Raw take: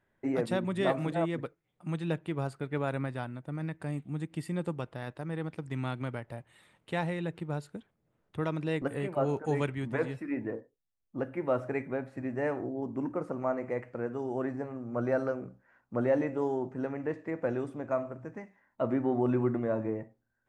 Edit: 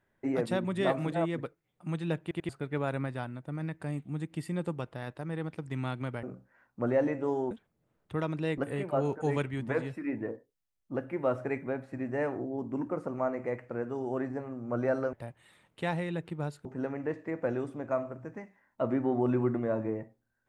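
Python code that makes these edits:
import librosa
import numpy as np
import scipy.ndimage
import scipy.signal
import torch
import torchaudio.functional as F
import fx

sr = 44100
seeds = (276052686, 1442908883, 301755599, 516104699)

y = fx.edit(x, sr, fx.stutter_over(start_s=2.22, slice_s=0.09, count=3),
    fx.swap(start_s=6.23, length_s=1.52, other_s=15.37, other_length_s=1.28), tone=tone)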